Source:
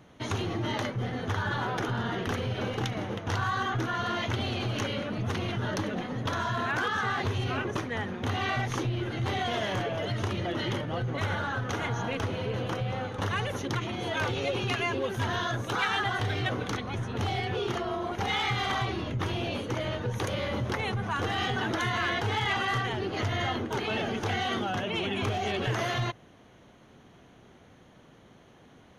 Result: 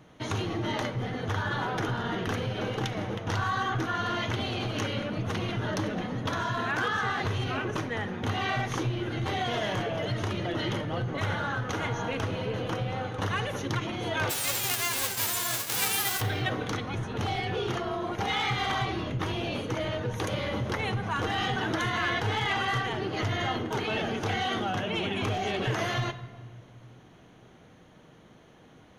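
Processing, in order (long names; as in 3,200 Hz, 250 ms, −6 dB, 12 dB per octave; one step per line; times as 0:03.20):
0:14.29–0:16.20: spectral envelope flattened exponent 0.1
rectangular room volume 1,700 cubic metres, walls mixed, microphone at 0.55 metres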